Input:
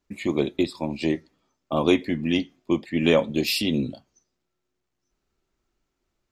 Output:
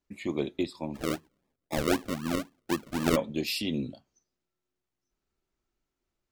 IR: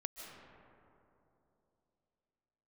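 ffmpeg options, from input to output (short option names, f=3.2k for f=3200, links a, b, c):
-filter_complex "[0:a]asplit=3[a][b][c];[a]afade=t=out:st=0.94:d=0.02[d];[b]acrusher=samples=42:mix=1:aa=0.000001:lfo=1:lforange=25.2:lforate=3.9,afade=t=in:st=0.94:d=0.02,afade=t=out:st=3.15:d=0.02[e];[c]afade=t=in:st=3.15:d=0.02[f];[d][e][f]amix=inputs=3:normalize=0,volume=-7dB"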